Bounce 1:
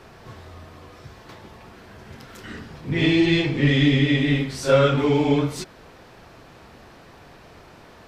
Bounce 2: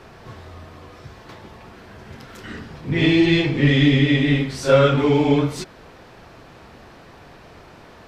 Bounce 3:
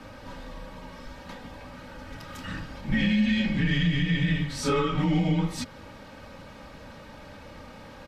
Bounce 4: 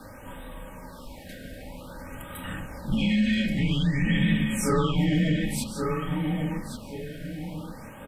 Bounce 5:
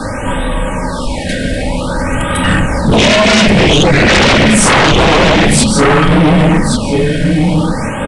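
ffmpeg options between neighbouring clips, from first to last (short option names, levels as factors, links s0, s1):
-af "highshelf=f=6700:g=-4.5,volume=1.33"
-af "aecho=1:1:3:0.69,alimiter=limit=0.211:level=0:latency=1:release=350,afreqshift=-120,volume=0.794"
-filter_complex "[0:a]asplit=2[s0][s1];[s1]adelay=1128,lowpass=f=3400:p=1,volume=0.631,asplit=2[s2][s3];[s3]adelay=1128,lowpass=f=3400:p=1,volume=0.39,asplit=2[s4][s5];[s5]adelay=1128,lowpass=f=3400:p=1,volume=0.39,asplit=2[s6][s7];[s7]adelay=1128,lowpass=f=3400:p=1,volume=0.39,asplit=2[s8][s9];[s9]adelay=1128,lowpass=f=3400:p=1,volume=0.39[s10];[s0][s2][s4][s6][s8][s10]amix=inputs=6:normalize=0,aexciter=amount=4.2:drive=5.1:freq=8100,afftfilt=real='re*(1-between(b*sr/1024,990*pow(5600/990,0.5+0.5*sin(2*PI*0.52*pts/sr))/1.41,990*pow(5600/990,0.5+0.5*sin(2*PI*0.52*pts/sr))*1.41))':imag='im*(1-between(b*sr/1024,990*pow(5600/990,0.5+0.5*sin(2*PI*0.52*pts/sr))/1.41,990*pow(5600/990,0.5+0.5*sin(2*PI*0.52*pts/sr))*1.41))':win_size=1024:overlap=0.75"
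-af "aeval=exprs='0.266*sin(PI/2*5.62*val(0)/0.266)':c=same,aresample=22050,aresample=44100,volume=2.24"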